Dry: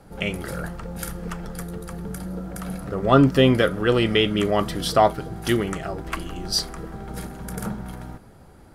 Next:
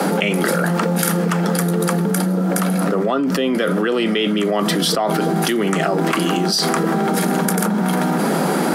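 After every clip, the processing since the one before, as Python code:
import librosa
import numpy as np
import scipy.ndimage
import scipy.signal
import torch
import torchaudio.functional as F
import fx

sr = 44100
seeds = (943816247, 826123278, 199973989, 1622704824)

y = scipy.signal.sosfilt(scipy.signal.butter(16, 160.0, 'highpass', fs=sr, output='sos'), x)
y = fx.env_flatten(y, sr, amount_pct=100)
y = F.gain(torch.from_numpy(y), -5.5).numpy()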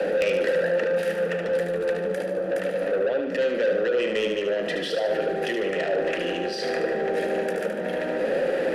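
y = fx.vowel_filter(x, sr, vowel='e')
y = 10.0 ** (-26.5 / 20.0) * np.tanh(y / 10.0 ** (-26.5 / 20.0))
y = fx.echo_feedback(y, sr, ms=74, feedback_pct=53, wet_db=-6)
y = F.gain(torch.from_numpy(y), 6.5).numpy()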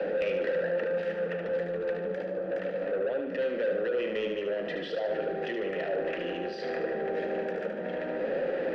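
y = fx.air_absorb(x, sr, metres=210.0)
y = F.gain(torch.from_numpy(y), -5.5).numpy()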